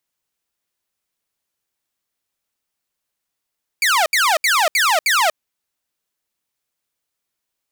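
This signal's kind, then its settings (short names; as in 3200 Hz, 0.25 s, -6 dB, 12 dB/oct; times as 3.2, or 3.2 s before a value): burst of laser zaps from 2400 Hz, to 590 Hz, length 0.24 s saw, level -10.5 dB, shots 5, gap 0.07 s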